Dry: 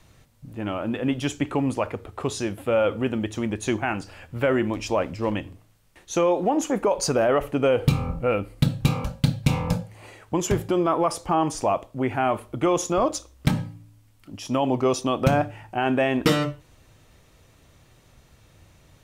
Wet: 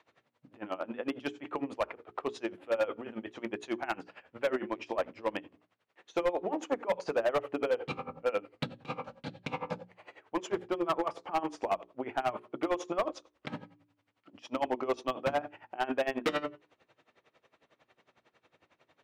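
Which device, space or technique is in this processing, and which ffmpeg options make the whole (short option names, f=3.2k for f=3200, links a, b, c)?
helicopter radio: -af "highpass=370,lowpass=2.8k,aeval=exprs='val(0)*pow(10,-22*(0.5-0.5*cos(2*PI*11*n/s))/20)':c=same,asoftclip=type=hard:threshold=-23dB,bandreject=f=60:t=h:w=6,bandreject=f=120:t=h:w=6,bandreject=f=180:t=h:w=6,bandreject=f=240:t=h:w=6,bandreject=f=300:t=h:w=6,bandreject=f=360:t=h:w=6,bandreject=f=420:t=h:w=6"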